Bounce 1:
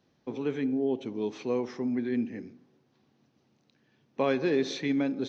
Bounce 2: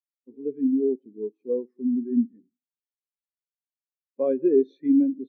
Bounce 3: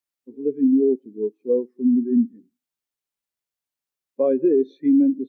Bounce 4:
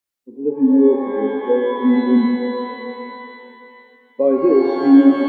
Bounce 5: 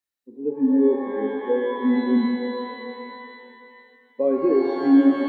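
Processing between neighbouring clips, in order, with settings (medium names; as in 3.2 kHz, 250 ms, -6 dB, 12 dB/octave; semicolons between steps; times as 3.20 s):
spectral contrast expander 2.5:1; trim +5 dB
peak limiter -17.5 dBFS, peak gain reduction 7.5 dB; trim +6.5 dB
pitch-shifted reverb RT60 2.7 s, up +12 st, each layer -8 dB, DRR 4 dB; trim +3.5 dB
small resonant body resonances 1.8/3.9 kHz, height 10 dB, ringing for 30 ms; trim -5.5 dB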